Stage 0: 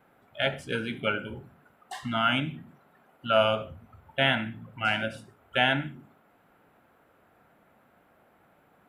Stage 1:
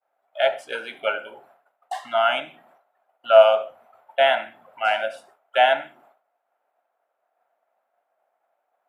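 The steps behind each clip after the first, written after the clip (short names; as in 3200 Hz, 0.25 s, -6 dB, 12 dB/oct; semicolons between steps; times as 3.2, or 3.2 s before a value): expander -50 dBFS; resonant high-pass 670 Hz, resonance Q 3.9; gain +1 dB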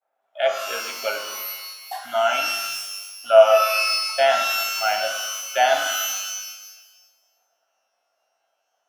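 shimmer reverb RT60 1.2 s, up +12 st, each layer -2 dB, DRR 6 dB; gain -2.5 dB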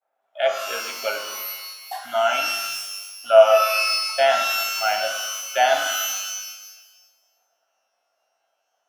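nothing audible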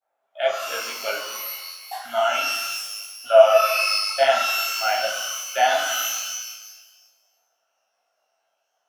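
detuned doubles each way 34 cents; gain +3 dB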